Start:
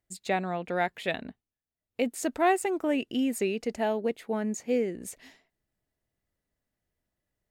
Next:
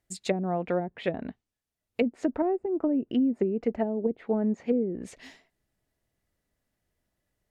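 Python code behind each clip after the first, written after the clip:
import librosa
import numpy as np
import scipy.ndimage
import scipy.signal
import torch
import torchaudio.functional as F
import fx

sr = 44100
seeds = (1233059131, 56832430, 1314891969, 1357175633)

y = fx.env_lowpass_down(x, sr, base_hz=330.0, full_db=-24.0)
y = y * 10.0 ** (4.5 / 20.0)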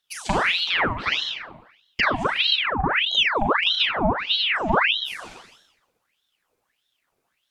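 y = fx.rev_schroeder(x, sr, rt60_s=0.96, comb_ms=32, drr_db=-1.0)
y = fx.ring_lfo(y, sr, carrier_hz=2000.0, swing_pct=80, hz=1.6)
y = y * 10.0 ** (5.0 / 20.0)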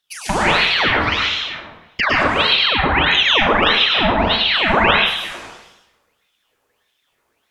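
y = fx.rev_plate(x, sr, seeds[0], rt60_s=0.75, hf_ratio=0.75, predelay_ms=95, drr_db=-2.5)
y = y * 10.0 ** (2.5 / 20.0)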